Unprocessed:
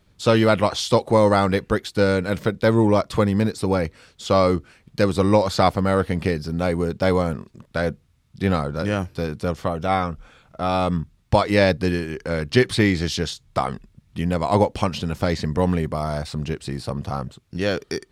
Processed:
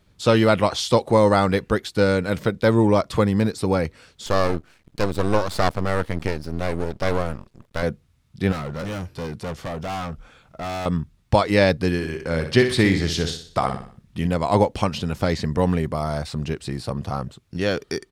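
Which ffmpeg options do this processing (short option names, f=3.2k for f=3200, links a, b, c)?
-filter_complex "[0:a]asettb=1/sr,asplit=3[a][b][c];[a]atrim=end=4.264[d];[b]atrim=start=4.26:end=7.83,asetpts=PTS-STARTPTS,afade=t=in:d=0.004:c=qsin,afade=t=out:st=3.566:d=0.004:c=qsin,aeval=exprs='max(val(0),0)':c=same[e];[c]atrim=start=7.826[f];[d][e]acrossfade=d=0.004:c1=hsin:c2=qsin[g];[g][f]acrossfade=d=0.004:c1=qsin:c2=hsin,asettb=1/sr,asplit=3[h][i][j];[h]atrim=end=8.524[k];[i]atrim=start=8.52:end=10.86,asetpts=PTS-STARTPTS,afade=t=in:d=0.004:c=qsin,afade=t=out:st=2.336:d=0.004:c=qsin,volume=26.5dB,asoftclip=hard,volume=-26.5dB[l];[j]atrim=start=10.856[m];[k][l]acrossfade=d=0.004:c1=hsin:c2=qsin[n];[n][m]acrossfade=d=0.004:c1=qsin:c2=hsin,asplit=3[o][p][q];[o]afade=t=out:st=12:d=0.02[r];[p]aecho=1:1:61|122|183|244|305:0.398|0.167|0.0702|0.0295|0.0124,afade=t=in:st=12:d=0.02,afade=t=out:st=14.26:d=0.02[s];[q]afade=t=in:st=14.26:d=0.02[t];[r][s][t]amix=inputs=3:normalize=0"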